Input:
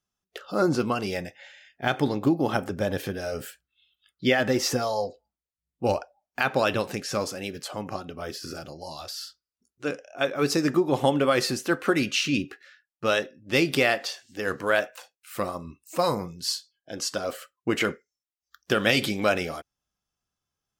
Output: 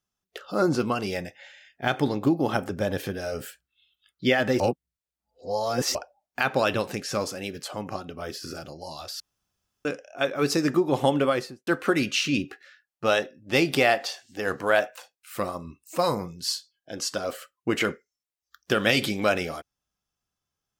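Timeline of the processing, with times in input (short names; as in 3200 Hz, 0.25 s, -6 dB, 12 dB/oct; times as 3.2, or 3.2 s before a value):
4.6–5.95 reverse
9.2–9.85 room tone
11.2–11.67 studio fade out
12.17–14.94 bell 760 Hz +6.5 dB 0.47 oct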